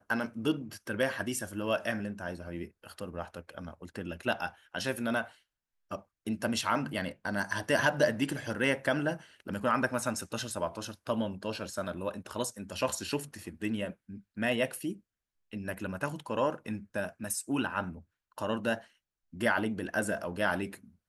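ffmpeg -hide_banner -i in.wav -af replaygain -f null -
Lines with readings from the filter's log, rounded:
track_gain = +12.8 dB
track_peak = 0.183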